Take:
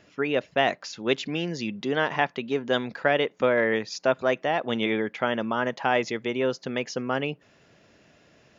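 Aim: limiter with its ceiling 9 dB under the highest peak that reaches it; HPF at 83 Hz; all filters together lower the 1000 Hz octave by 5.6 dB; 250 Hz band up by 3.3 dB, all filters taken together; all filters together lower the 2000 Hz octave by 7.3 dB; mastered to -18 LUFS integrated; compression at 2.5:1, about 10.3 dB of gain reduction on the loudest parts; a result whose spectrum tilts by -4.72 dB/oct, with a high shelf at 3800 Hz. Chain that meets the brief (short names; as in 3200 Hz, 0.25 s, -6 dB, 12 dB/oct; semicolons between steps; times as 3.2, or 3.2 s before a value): HPF 83 Hz; bell 250 Hz +4.5 dB; bell 1000 Hz -7.5 dB; bell 2000 Hz -8 dB; high shelf 3800 Hz +4 dB; compressor 2.5:1, threshold -35 dBFS; gain +20.5 dB; limiter -7.5 dBFS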